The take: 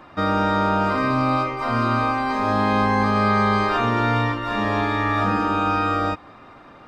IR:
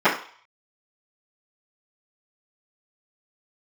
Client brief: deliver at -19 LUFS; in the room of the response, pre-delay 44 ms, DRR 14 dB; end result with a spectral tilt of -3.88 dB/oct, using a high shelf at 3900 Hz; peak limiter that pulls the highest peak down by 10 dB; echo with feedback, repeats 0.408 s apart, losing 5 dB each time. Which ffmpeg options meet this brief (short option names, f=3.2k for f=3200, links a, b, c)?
-filter_complex "[0:a]highshelf=f=3.9k:g=8,alimiter=limit=-17dB:level=0:latency=1,aecho=1:1:408|816|1224|1632|2040|2448|2856:0.562|0.315|0.176|0.0988|0.0553|0.031|0.0173,asplit=2[a][b];[1:a]atrim=start_sample=2205,adelay=44[c];[b][c]afir=irnorm=-1:irlink=0,volume=-36dB[d];[a][d]amix=inputs=2:normalize=0,volume=4.5dB"